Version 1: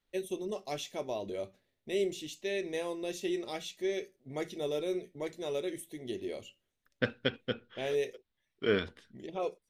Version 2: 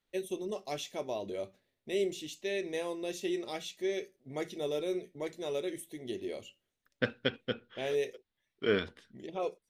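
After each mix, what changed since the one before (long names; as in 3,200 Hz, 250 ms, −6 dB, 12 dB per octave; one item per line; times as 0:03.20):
master: add low-shelf EQ 70 Hz −6 dB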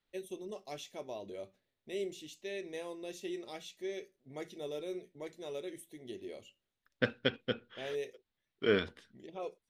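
first voice −6.5 dB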